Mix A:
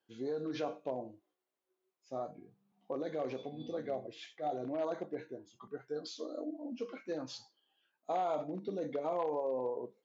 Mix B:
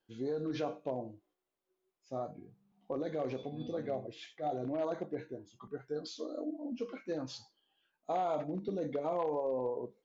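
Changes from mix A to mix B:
second voice: add peaking EQ 1.5 kHz +13 dB 2.1 oct; master: remove high-pass 240 Hz 6 dB/octave

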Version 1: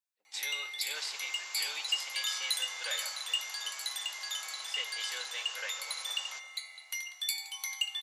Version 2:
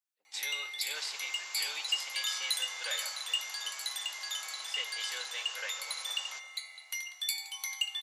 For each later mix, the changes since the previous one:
no change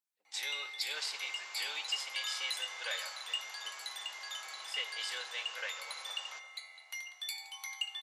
first sound: add tilt EQ -3 dB/octave; second sound: add treble shelf 4.5 kHz -12 dB

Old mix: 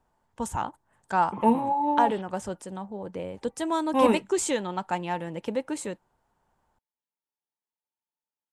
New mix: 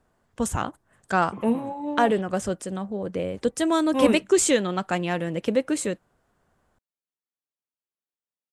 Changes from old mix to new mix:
first voice +7.0 dB; master: add peaking EQ 890 Hz -13.5 dB 0.3 oct

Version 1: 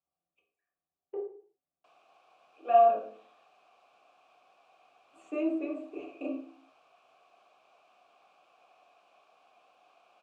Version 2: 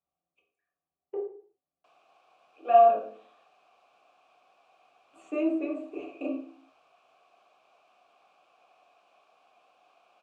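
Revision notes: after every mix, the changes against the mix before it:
speech +3.0 dB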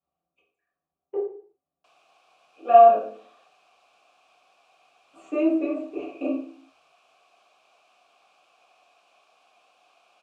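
speech: send +6.0 dB; background: add treble shelf 2.6 kHz +10.5 dB

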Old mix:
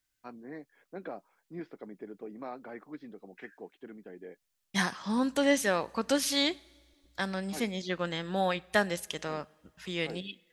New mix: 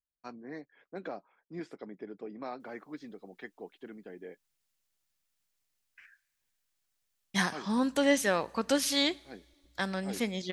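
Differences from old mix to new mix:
first voice: remove distance through air 230 m; second voice: entry +2.60 s

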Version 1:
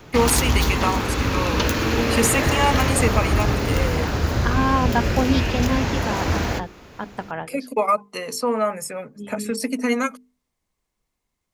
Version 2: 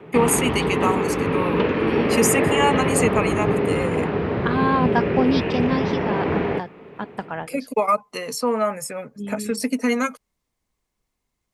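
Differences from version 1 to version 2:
background: add cabinet simulation 160–2600 Hz, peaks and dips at 170 Hz +8 dB, 420 Hz +9 dB, 1.5 kHz -5 dB; master: remove hum notches 50/100/150/200/250/300/350/400/450 Hz

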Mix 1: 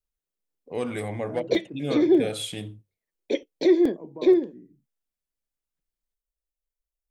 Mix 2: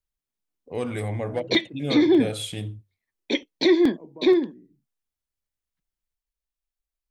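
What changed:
first voice: add peaking EQ 83 Hz +13 dB 0.72 oct; second voice -3.5 dB; background: add graphic EQ 125/250/500/1000/2000/4000 Hz +4/+7/-9/+10/+5/+10 dB

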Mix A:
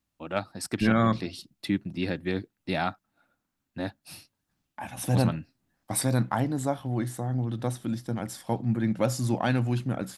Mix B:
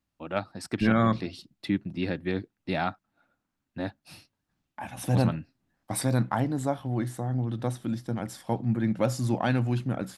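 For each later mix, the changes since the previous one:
first voice: add treble shelf 9.3 kHz -8 dB; master: add treble shelf 5.1 kHz -5 dB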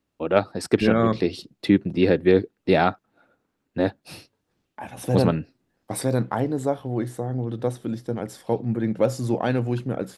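first voice +7.0 dB; master: add peaking EQ 440 Hz +12 dB 0.65 oct

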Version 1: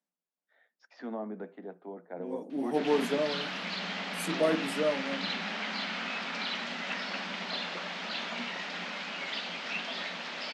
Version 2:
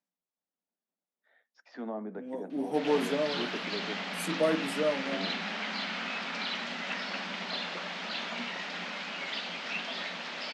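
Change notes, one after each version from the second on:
first voice: entry +0.75 s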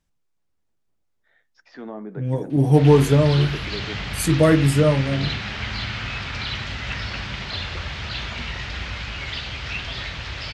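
second voice +8.0 dB; master: remove rippled Chebyshev high-pass 170 Hz, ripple 6 dB

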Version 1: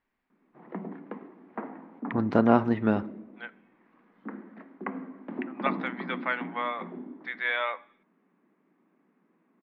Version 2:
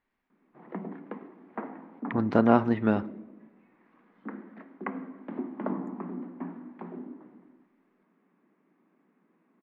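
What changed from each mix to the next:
second voice: muted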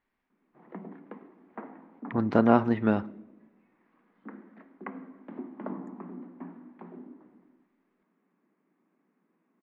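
background -5.0 dB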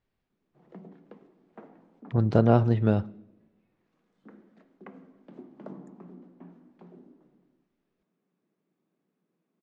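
speech +6.0 dB; background: remove distance through air 310 m; master: add graphic EQ 125/250/1000/2000 Hz +8/-10/-10/-11 dB

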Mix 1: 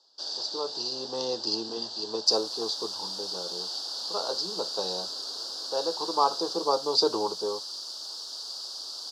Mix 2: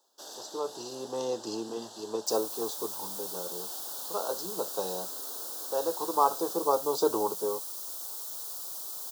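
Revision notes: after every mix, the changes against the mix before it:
master: remove resonant low-pass 4.7 kHz, resonance Q 7.9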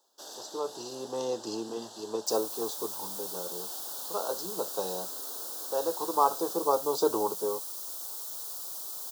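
no change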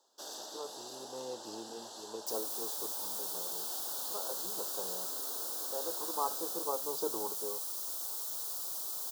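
speech -10.5 dB

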